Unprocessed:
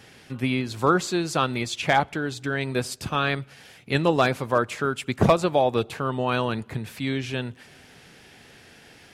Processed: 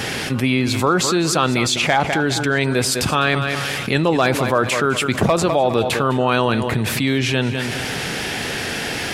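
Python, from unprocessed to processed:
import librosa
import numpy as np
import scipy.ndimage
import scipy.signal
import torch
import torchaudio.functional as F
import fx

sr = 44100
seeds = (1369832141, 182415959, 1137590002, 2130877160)

y = fx.low_shelf(x, sr, hz=150.0, db=-3.5)
y = fx.echo_feedback(y, sr, ms=203, feedback_pct=27, wet_db=-15.0)
y = fx.env_flatten(y, sr, amount_pct=70)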